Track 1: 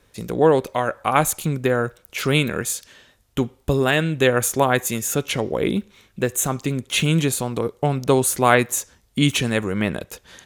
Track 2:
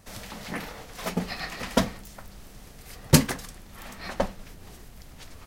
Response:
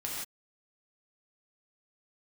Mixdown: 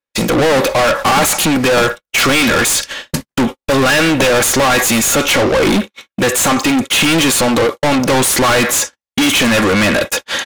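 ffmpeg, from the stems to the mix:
-filter_complex "[0:a]aecho=1:1:3.6:0.44,asplit=2[link_01][link_02];[link_02]highpass=frequency=720:poles=1,volume=36dB,asoftclip=type=tanh:threshold=-1dB[link_03];[link_01][link_03]amix=inputs=2:normalize=0,lowpass=frequency=4700:poles=1,volume=-6dB,asoftclip=type=tanh:threshold=-12dB,volume=2dB[link_04];[1:a]dynaudnorm=framelen=300:gausssize=3:maxgain=13dB,volume=-4.5dB,asplit=2[link_05][link_06];[link_06]volume=-20.5dB[link_07];[2:a]atrim=start_sample=2205[link_08];[link_07][link_08]afir=irnorm=-1:irlink=0[link_09];[link_04][link_05][link_09]amix=inputs=3:normalize=0,agate=range=-59dB:threshold=-18dB:ratio=16:detection=peak"

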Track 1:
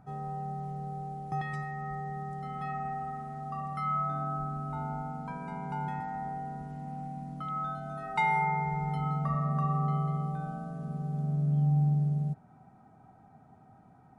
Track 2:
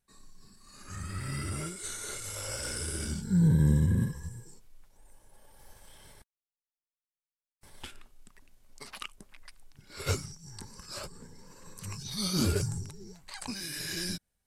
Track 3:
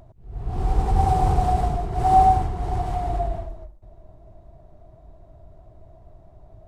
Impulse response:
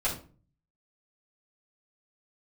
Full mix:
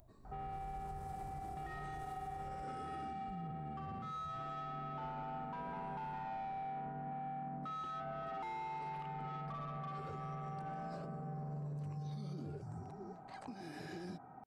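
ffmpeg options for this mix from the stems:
-filter_complex "[0:a]lowpass=2100,acompressor=threshold=-32dB:ratio=6,asplit=2[link_01][link_02];[link_02]highpass=frequency=720:poles=1,volume=22dB,asoftclip=type=tanh:threshold=-23.5dB[link_03];[link_01][link_03]amix=inputs=2:normalize=0,lowpass=frequency=1000:poles=1,volume=-6dB,adelay=250,volume=-6dB[link_04];[1:a]bandpass=frequency=360:width_type=q:width=0.79:csg=0,volume=1dB[link_05];[2:a]aemphasis=mode=production:type=50fm,volume=-15dB,asplit=3[link_06][link_07][link_08];[link_06]atrim=end=2.63,asetpts=PTS-STARTPTS,afade=type=out:start_time=2.626:duration=0.004:curve=hsin[link_09];[link_07]atrim=start=2.63:end=3.28,asetpts=PTS-STARTPTS,volume=0[link_10];[link_08]atrim=start=3.28,asetpts=PTS-STARTPTS,afade=type=in:duration=0.004:curve=hsin[link_11];[link_09][link_10][link_11]concat=n=3:v=0:a=1[link_12];[link_05][link_12]amix=inputs=2:normalize=0,acompressor=threshold=-45dB:ratio=2,volume=0dB[link_13];[link_04][link_13]amix=inputs=2:normalize=0,alimiter=level_in=13.5dB:limit=-24dB:level=0:latency=1:release=121,volume=-13.5dB"

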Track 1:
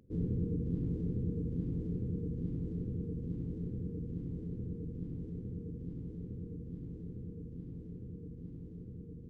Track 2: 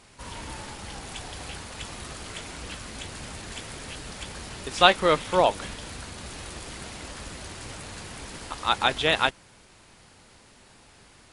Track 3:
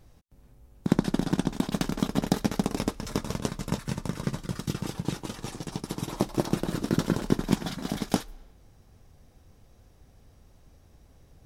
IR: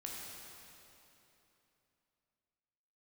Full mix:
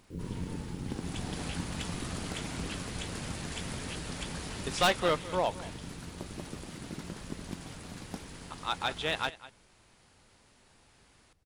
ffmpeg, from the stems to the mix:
-filter_complex "[0:a]tremolo=f=94:d=0.857,acrusher=bits=10:mix=0:aa=0.000001,volume=-0.5dB[link_01];[1:a]volume=-2dB,afade=type=in:start_time=0.86:duration=0.57:silence=0.375837,afade=type=out:start_time=4.69:duration=0.59:silence=0.446684,asplit=2[link_02][link_03];[link_03]volume=-18dB[link_04];[2:a]volume=-17.5dB[link_05];[link_04]aecho=0:1:203:1[link_06];[link_01][link_02][link_05][link_06]amix=inputs=4:normalize=0,asoftclip=type=hard:threshold=-20dB"

